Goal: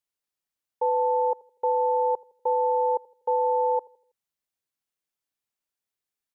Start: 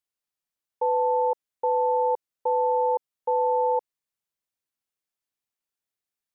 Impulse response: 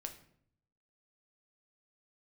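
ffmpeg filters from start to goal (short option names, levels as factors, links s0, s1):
-filter_complex "[0:a]asplit=2[s0][s1];[s1]adelay=81,lowpass=f=800:p=1,volume=0.0891,asplit=2[s2][s3];[s3]adelay=81,lowpass=f=800:p=1,volume=0.52,asplit=2[s4][s5];[s5]adelay=81,lowpass=f=800:p=1,volume=0.52,asplit=2[s6][s7];[s7]adelay=81,lowpass=f=800:p=1,volume=0.52[s8];[s0][s2][s4][s6][s8]amix=inputs=5:normalize=0"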